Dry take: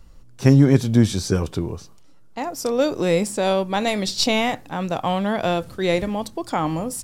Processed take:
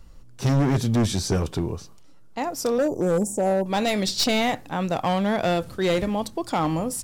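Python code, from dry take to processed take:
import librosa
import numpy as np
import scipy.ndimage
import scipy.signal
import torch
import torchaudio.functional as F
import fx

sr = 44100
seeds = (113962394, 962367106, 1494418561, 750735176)

y = fx.ellip_bandstop(x, sr, low_hz=840.0, high_hz=6500.0, order=3, stop_db=40, at=(2.78, 3.66))
y = np.clip(10.0 ** (17.0 / 20.0) * y, -1.0, 1.0) / 10.0 ** (17.0 / 20.0)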